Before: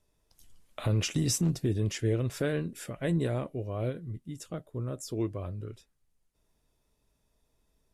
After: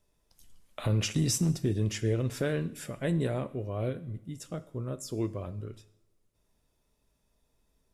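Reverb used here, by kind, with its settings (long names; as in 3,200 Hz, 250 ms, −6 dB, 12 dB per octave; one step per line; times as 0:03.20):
coupled-rooms reverb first 0.68 s, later 2 s, from −20 dB, DRR 13 dB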